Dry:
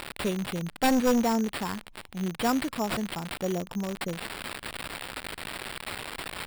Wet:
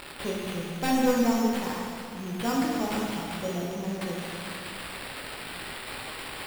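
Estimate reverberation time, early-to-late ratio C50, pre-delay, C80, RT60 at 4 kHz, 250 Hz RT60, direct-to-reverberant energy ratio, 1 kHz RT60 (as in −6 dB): 2.5 s, −1.0 dB, 6 ms, 0.5 dB, 2.3 s, 2.5 s, −4.0 dB, 2.5 s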